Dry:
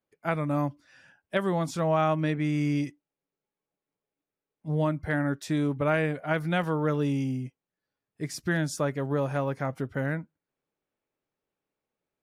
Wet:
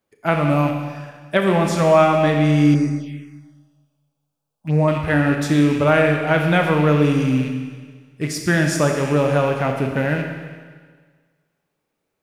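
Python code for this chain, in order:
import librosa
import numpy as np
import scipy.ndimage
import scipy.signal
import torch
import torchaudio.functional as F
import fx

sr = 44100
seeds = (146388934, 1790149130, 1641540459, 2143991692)

y = fx.rattle_buzz(x, sr, strikes_db=-38.0, level_db=-34.0)
y = fx.rev_schroeder(y, sr, rt60_s=1.6, comb_ms=27, drr_db=3.0)
y = fx.env_phaser(y, sr, low_hz=340.0, high_hz=3200.0, full_db=-26.5, at=(2.74, 4.88))
y = F.gain(torch.from_numpy(y), 9.0).numpy()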